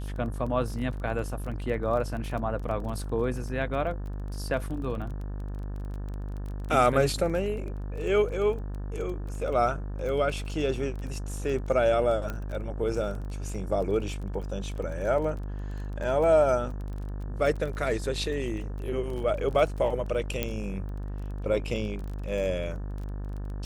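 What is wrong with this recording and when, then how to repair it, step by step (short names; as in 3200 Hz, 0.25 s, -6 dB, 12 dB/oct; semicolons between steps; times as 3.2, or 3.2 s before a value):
buzz 50 Hz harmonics 36 -34 dBFS
crackle 21/s -35 dBFS
12.3 pop -20 dBFS
20.43 pop -12 dBFS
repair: de-click; de-hum 50 Hz, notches 36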